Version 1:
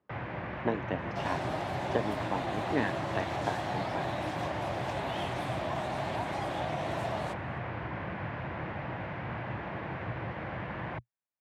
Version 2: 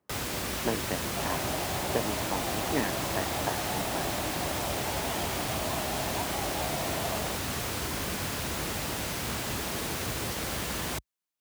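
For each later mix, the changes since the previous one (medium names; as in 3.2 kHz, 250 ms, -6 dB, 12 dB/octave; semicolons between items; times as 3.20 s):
first sound: remove cabinet simulation 100–2000 Hz, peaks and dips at 120 Hz +5 dB, 250 Hz -8 dB, 420 Hz -8 dB, 1.3 kHz -5 dB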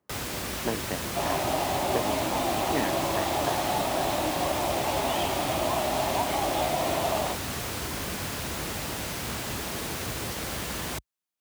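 second sound +8.0 dB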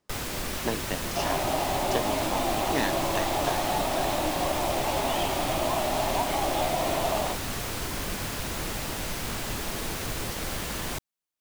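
speech: remove low-pass 1.8 kHz; master: remove high-pass 52 Hz 24 dB/octave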